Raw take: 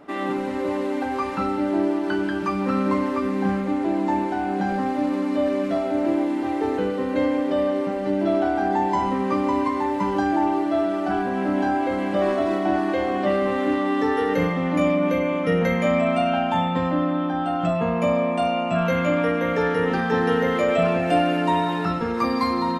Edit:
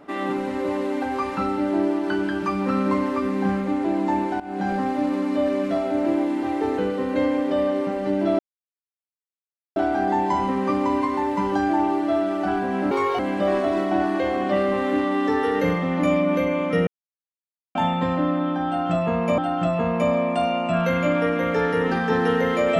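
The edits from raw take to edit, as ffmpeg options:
ffmpeg -i in.wav -filter_complex "[0:a]asplit=8[link_01][link_02][link_03][link_04][link_05][link_06][link_07][link_08];[link_01]atrim=end=4.4,asetpts=PTS-STARTPTS,afade=type=out:start_time=4.396:duration=0.004:curve=hsin:silence=0.158489[link_09];[link_02]atrim=start=4.4:end=8.39,asetpts=PTS-STARTPTS,afade=type=in:duration=0.28:silence=0.158489,afade=type=out:start_time=3.986:duration=0.004:curve=hsin,apad=pad_dur=1.37[link_10];[link_03]atrim=start=8.39:end=11.544,asetpts=PTS-STARTPTS,afade=type=in:duration=0.004:curve=hsin[link_11];[link_04]atrim=start=11.54:end=11.93,asetpts=PTS-STARTPTS,asetrate=61299,aresample=44100,atrim=end_sample=12373,asetpts=PTS-STARTPTS[link_12];[link_05]atrim=start=11.926:end=15.61,asetpts=PTS-STARTPTS,afade=type=out:start_time=3.68:duration=0.004:curve=hsin[link_13];[link_06]atrim=start=15.61:end=16.49,asetpts=PTS-STARTPTS,volume=0[link_14];[link_07]atrim=start=16.49:end=18.122,asetpts=PTS-STARTPTS,afade=type=in:duration=0.004:curve=hsin[link_15];[link_08]atrim=start=17.398[link_16];[link_09][link_10][link_11]concat=n=3:v=0:a=1[link_17];[link_17][link_12]acrossfade=duration=0.004:curve1=hsin:curve2=hsin[link_18];[link_13][link_14][link_15]concat=n=3:v=0:a=1[link_19];[link_18][link_19]acrossfade=duration=0.004:curve1=hsin:curve2=hsin[link_20];[link_20][link_16]acrossfade=duration=0.004:curve1=hsin:curve2=hsin" out.wav

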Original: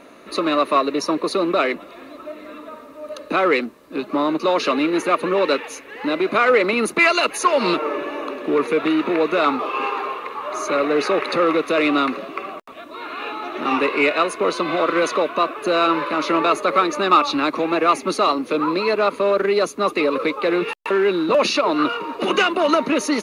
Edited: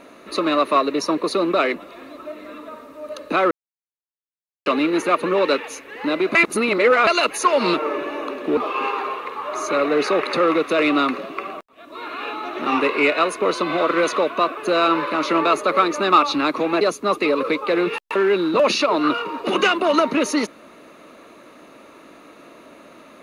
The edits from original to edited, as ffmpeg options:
ffmpeg -i in.wav -filter_complex "[0:a]asplit=8[link_01][link_02][link_03][link_04][link_05][link_06][link_07][link_08];[link_01]atrim=end=3.51,asetpts=PTS-STARTPTS,afade=type=out:start_time=3.506:duration=0.004:curve=hsin[link_09];[link_02]atrim=start=3.51:end=4.66,asetpts=PTS-STARTPTS,volume=0[link_10];[link_03]atrim=start=4.66:end=6.352,asetpts=PTS-STARTPTS,afade=type=in:duration=0.004:curve=hsin[link_11];[link_04]atrim=start=6.348:end=7.072,asetpts=PTS-STARTPTS,areverse[link_12];[link_05]atrim=start=7.068:end=8.572[link_13];[link_06]atrim=start=9.558:end=12.65,asetpts=PTS-STARTPTS,afade=type=out:start_time=3.088:duration=0.004:curve=hsin[link_14];[link_07]atrim=start=12.65:end=17.802,asetpts=PTS-STARTPTS,afade=type=in:duration=0.32[link_15];[link_08]atrim=start=19.558[link_16];[link_09][link_10][link_11]concat=n=3:v=0:a=1[link_17];[link_17][link_12]acrossfade=duration=0.004:curve1=hsin:curve2=hsin[link_18];[link_18][link_13]acrossfade=duration=0.004:curve1=hsin:curve2=hsin[link_19];[link_14][link_15]concat=n=2:v=0:a=1[link_20];[link_19][link_20]acrossfade=duration=0.004:curve1=hsin:curve2=hsin[link_21];[link_21][link_16]acrossfade=duration=0.004:curve1=hsin:curve2=hsin" out.wav

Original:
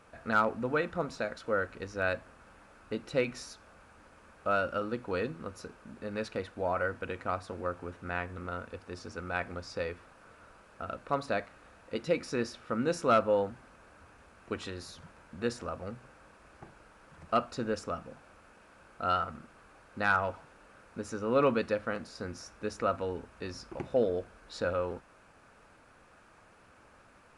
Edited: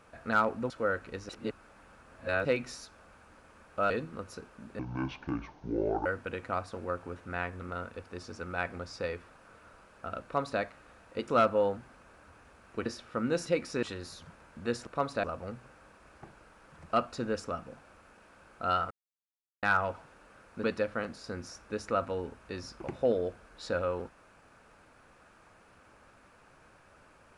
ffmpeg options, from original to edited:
ffmpeg -i in.wav -filter_complex "[0:a]asplit=16[link_01][link_02][link_03][link_04][link_05][link_06][link_07][link_08][link_09][link_10][link_11][link_12][link_13][link_14][link_15][link_16];[link_01]atrim=end=0.702[link_17];[link_02]atrim=start=1.378:end=1.972[link_18];[link_03]atrim=start=1.968:end=3.132,asetpts=PTS-STARTPTS,areverse[link_19];[link_04]atrim=start=3.128:end=4.582[link_20];[link_05]atrim=start=5.168:end=6.064[link_21];[link_06]atrim=start=6.06:end=6.82,asetpts=PTS-STARTPTS,asetrate=26460,aresample=44100[link_22];[link_07]atrim=start=6.816:end=12.042[link_23];[link_08]atrim=start=13.008:end=14.592[link_24];[link_09]atrim=start=12.408:end=13.012[link_25];[link_10]atrim=start=12.038:end=12.412[link_26];[link_11]atrim=start=14.588:end=15.632[link_27];[link_12]atrim=start=10.998:end=11.372[link_28];[link_13]atrim=start=15.628:end=19.3,asetpts=PTS-STARTPTS,afade=type=out:start_time=3.668:duration=0.004:curve=hsin[link_29];[link_14]atrim=start=19.3:end=20.02,asetpts=PTS-STARTPTS,volume=0[link_30];[link_15]atrim=start=20.02:end=21.032,asetpts=PTS-STARTPTS,afade=type=in:duration=0.004:curve=hsin[link_31];[link_16]atrim=start=21.548[link_32];[link_17][link_18]acrossfade=duration=0.004:curve1=hsin:curve2=hsin[link_33];[link_33][link_19]acrossfade=duration=0.004:curve1=hsin:curve2=hsin[link_34];[link_34][link_20]acrossfade=duration=0.004:curve1=hsin:curve2=hsin[link_35];[link_35][link_21]acrossfade=duration=0.004:curve1=hsin:curve2=hsin[link_36];[link_36][link_22]acrossfade=duration=0.004:curve1=hsin:curve2=hsin[link_37];[link_37][link_23]acrossfade=duration=0.004:curve1=hsin:curve2=hsin[link_38];[link_38][link_24]acrossfade=duration=0.004:curve1=hsin:curve2=hsin[link_39];[link_39][link_25]acrossfade=duration=0.004:curve1=hsin:curve2=hsin[link_40];[link_40][link_26]acrossfade=duration=0.004:curve1=hsin:curve2=hsin[link_41];[link_41][link_27]acrossfade=duration=0.004:curve1=hsin:curve2=hsin[link_42];[link_42][link_28]acrossfade=duration=0.004:curve1=hsin:curve2=hsin[link_43];[link_29][link_30][link_31]concat=n=3:v=0:a=1[link_44];[link_43][link_44]acrossfade=duration=0.004:curve1=hsin:curve2=hsin[link_45];[link_45][link_32]acrossfade=duration=0.004:curve1=hsin:curve2=hsin" out.wav

